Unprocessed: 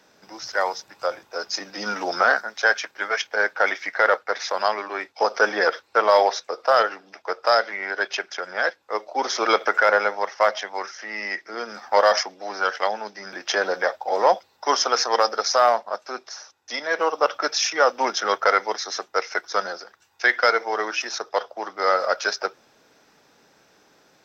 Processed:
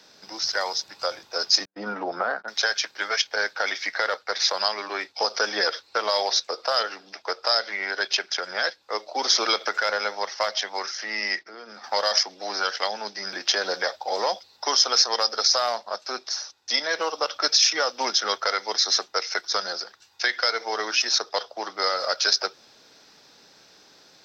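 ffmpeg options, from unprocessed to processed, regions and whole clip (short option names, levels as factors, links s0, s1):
-filter_complex "[0:a]asettb=1/sr,asplit=3[s0][s1][s2];[s0]atrim=end=1.654[s3];[s1]atrim=start=1.65:end=2.48,asetpts=PTS-STARTPTS,afade=t=in:d=0.004:c=qsin,afade=t=out:st=0.826:d=0.004:c=qsin,lowpass=1200,agate=range=0.00631:threshold=0.0126:ratio=16:release=100:detection=peak[s4];[s2]atrim=start=2.476[s5];[s3][s4]acrossfade=d=0.004:c1=hsin:c2=qsin[s6];[s6][s5]acrossfade=d=0.004:c1=qsin:c2=hsin,asettb=1/sr,asplit=3[s7][s8][s9];[s7]atrim=end=11.394[s10];[s8]atrim=start=11.39:end=11.84,asetpts=PTS-STARTPTS,afade=t=in:d=0.004:c=qsin,afade=t=out:st=0.446:d=0.004:c=qsin,lowpass=f=2300:p=1,agate=range=0.316:threshold=0.00158:ratio=16:release=100:detection=peak,acompressor=threshold=0.00794:ratio=3:attack=3.2:release=140:knee=1:detection=peak[s11];[s9]atrim=start=11.836[s12];[s10][s11]acrossfade=d=0.004:c1=hsin:c2=qsin[s13];[s13][s12]acrossfade=d=0.004:c1=qsin:c2=hsin,equalizer=f=4400:t=o:w=1:g=12,alimiter=limit=0.473:level=0:latency=1:release=181,acrossover=split=140|3000[s14][s15][s16];[s15]acompressor=threshold=0.0447:ratio=2[s17];[s14][s17][s16]amix=inputs=3:normalize=0"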